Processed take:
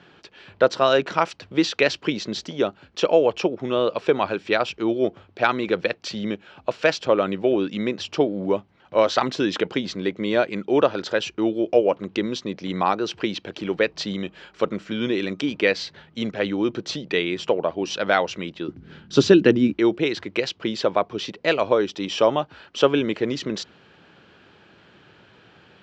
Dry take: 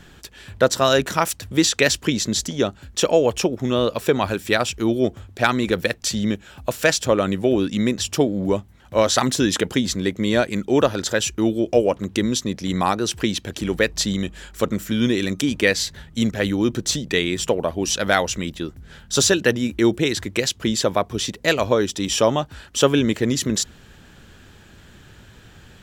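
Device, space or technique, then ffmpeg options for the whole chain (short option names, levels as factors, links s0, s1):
kitchen radio: -filter_complex "[0:a]asettb=1/sr,asplit=3[s0][s1][s2];[s0]atrim=end=18.684[s3];[s1]atrim=start=18.68:end=19.73,asetpts=PTS-STARTPTS,afade=t=in:d=0.004:c=qsin,afade=t=out:st=1.046:d=0.004:c=qsin,lowshelf=f=420:t=q:w=1.5:g=9.5[s4];[s2]atrim=start=19.726[s5];[s3][s4]acrossfade=d=0.004:c1=hsin:c2=qsin[s6];[s6][s5]acrossfade=d=0.004:c1=qsin:c2=hsin,highpass=210,equalizer=f=240:t=q:w=4:g=-6,equalizer=f=1800:t=q:w=4:g=-5,equalizer=f=3600:t=q:w=4:g=-5,lowpass=f=4200:w=0.5412,lowpass=f=4200:w=1.3066"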